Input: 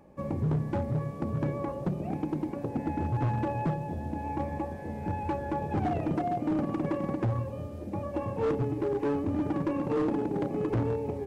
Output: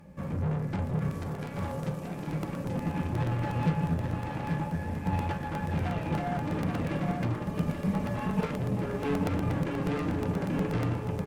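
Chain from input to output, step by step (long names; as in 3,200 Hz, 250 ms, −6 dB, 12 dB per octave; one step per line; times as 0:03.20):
flat-topped bell 540 Hz −8.5 dB 2.3 octaves
tube saturation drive 39 dB, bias 0.4
in parallel at +1 dB: brickwall limiter −48 dBFS, peak gain reduction 11 dB
0:01.12–0:02.27: on the sum: bass and treble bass −8 dB, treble +6 dB
0:07.34–0:08.45: comb filter 4.7 ms, depth 96%
single-tap delay 833 ms −4 dB
on a send at −4.5 dB: convolution reverb, pre-delay 3 ms
on the sum: regular buffer underruns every 0.12 s, samples 64, repeat, from 0:00.87
expander for the loud parts 1.5 to 1, over −47 dBFS
level +9 dB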